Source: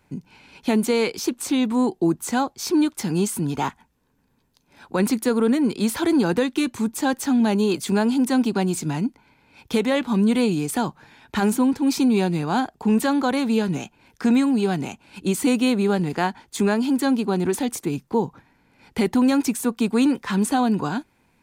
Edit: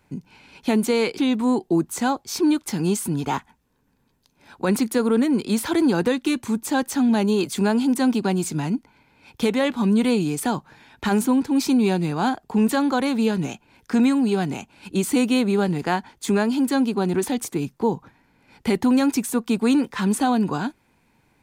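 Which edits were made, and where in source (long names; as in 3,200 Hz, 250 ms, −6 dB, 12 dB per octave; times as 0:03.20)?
0:01.18–0:01.49: remove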